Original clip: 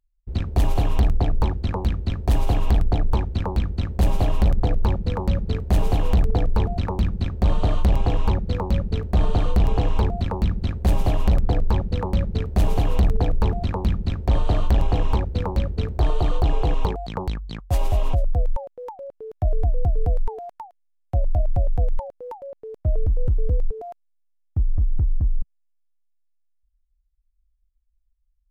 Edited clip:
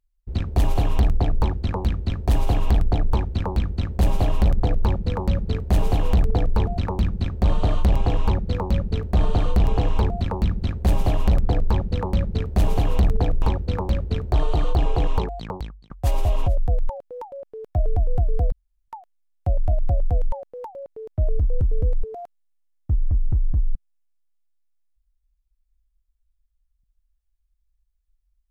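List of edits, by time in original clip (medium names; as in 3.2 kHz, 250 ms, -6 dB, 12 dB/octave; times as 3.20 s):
13.42–15.09 s: delete
16.78–17.57 s: fade out equal-power
20.19–20.55 s: room tone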